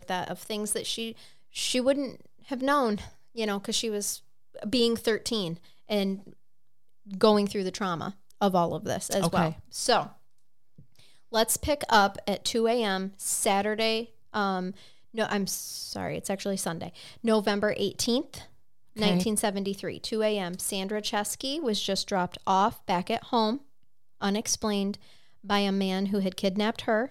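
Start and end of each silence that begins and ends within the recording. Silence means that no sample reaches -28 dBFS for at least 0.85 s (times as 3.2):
6.14–7.14
10.03–11.34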